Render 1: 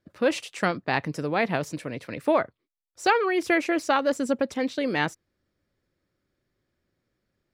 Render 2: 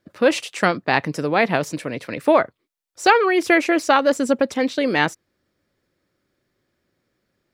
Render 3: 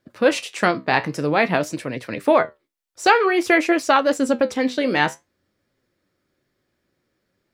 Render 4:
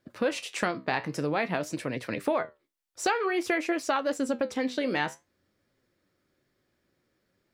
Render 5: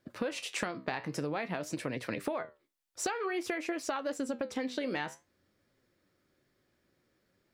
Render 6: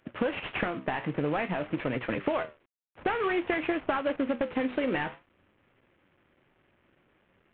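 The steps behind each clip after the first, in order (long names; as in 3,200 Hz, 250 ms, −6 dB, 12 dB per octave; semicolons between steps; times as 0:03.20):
low-shelf EQ 100 Hz −10 dB; level +7 dB
flanger 0.52 Hz, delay 7.3 ms, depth 9.5 ms, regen +64%; level +4 dB
downward compressor 2.5 to 1, threshold −26 dBFS, peak gain reduction 11.5 dB; level −2 dB
downward compressor, threshold −31 dBFS, peak gain reduction 10 dB
variable-slope delta modulation 16 kbit/s; level +6.5 dB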